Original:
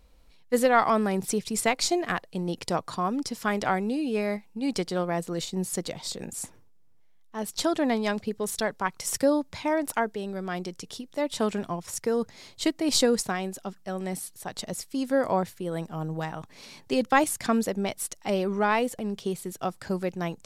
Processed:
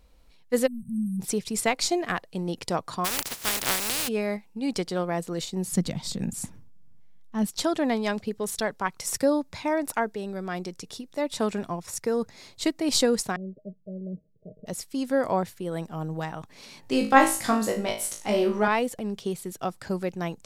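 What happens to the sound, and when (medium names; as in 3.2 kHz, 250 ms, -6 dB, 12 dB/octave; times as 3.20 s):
0.67–1.20 s: spectral selection erased 240–8100 Hz
3.04–4.07 s: spectral contrast reduction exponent 0.16
5.67–7.47 s: resonant low shelf 290 Hz +9 dB, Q 1.5
9.02–12.81 s: band-stop 3.1 kHz
13.36–14.66 s: rippled Chebyshev low-pass 640 Hz, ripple 9 dB
16.81–18.68 s: flutter echo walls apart 3.2 m, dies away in 0.37 s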